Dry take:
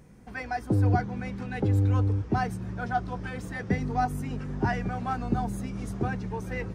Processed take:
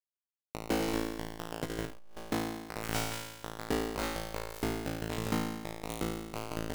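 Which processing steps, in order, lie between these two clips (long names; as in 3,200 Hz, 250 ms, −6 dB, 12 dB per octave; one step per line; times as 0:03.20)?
running median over 41 samples
0:02.79–0:03.22: high-shelf EQ 2,600 Hz +10.5 dB
0:03.95–0:04.96: high-pass filter 51 Hz 6 dB per octave
downward compressor 6 to 1, threshold −34 dBFS, peak gain reduction 14 dB
bit reduction 5 bits
flutter between parallel walls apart 3.1 metres, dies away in 1.1 s
convolution reverb RT60 0.95 s, pre-delay 7 ms, DRR 15.5 dB
0:01.55–0:02.17: saturating transformer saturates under 210 Hz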